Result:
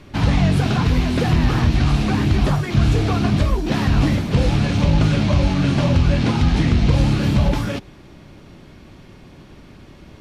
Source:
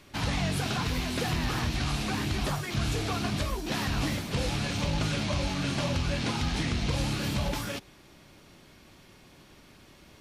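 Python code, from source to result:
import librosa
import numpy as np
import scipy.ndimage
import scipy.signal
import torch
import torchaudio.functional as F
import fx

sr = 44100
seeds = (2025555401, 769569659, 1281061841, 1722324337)

y = fx.lowpass(x, sr, hz=3500.0, slope=6)
y = fx.low_shelf(y, sr, hz=420.0, db=8.0)
y = F.gain(torch.from_numpy(y), 7.0).numpy()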